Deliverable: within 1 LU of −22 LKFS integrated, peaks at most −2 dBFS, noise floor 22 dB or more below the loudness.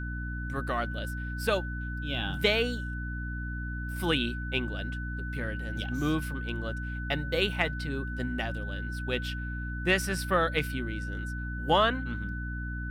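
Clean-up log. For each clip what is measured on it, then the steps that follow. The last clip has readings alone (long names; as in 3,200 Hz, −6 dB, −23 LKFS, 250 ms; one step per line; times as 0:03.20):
mains hum 60 Hz; hum harmonics up to 300 Hz; level of the hum −33 dBFS; interfering tone 1,500 Hz; level of the tone −39 dBFS; integrated loudness −31.0 LKFS; sample peak −11.5 dBFS; target loudness −22.0 LKFS
→ mains-hum notches 60/120/180/240/300 Hz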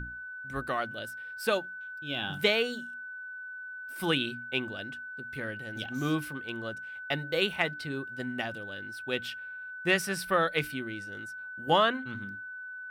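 mains hum none found; interfering tone 1,500 Hz; level of the tone −39 dBFS
→ notch filter 1,500 Hz, Q 30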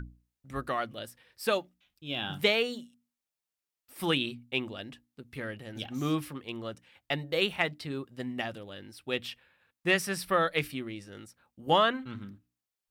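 interfering tone none found; integrated loudness −31.5 LKFS; sample peak −12.5 dBFS; target loudness −22.0 LKFS
→ level +9.5 dB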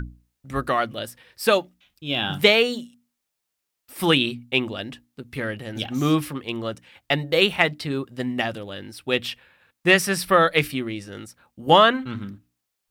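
integrated loudness −22.0 LKFS; sample peak −3.0 dBFS; background noise floor −81 dBFS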